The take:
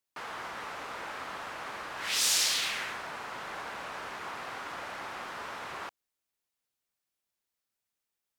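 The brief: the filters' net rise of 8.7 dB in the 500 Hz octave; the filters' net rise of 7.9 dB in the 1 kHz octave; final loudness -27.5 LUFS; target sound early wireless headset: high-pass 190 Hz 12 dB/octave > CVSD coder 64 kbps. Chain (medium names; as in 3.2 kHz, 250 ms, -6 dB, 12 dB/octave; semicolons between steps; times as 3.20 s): high-pass 190 Hz 12 dB/octave; peaking EQ 500 Hz +8.5 dB; peaking EQ 1 kHz +7.5 dB; CVSD coder 64 kbps; trim +4 dB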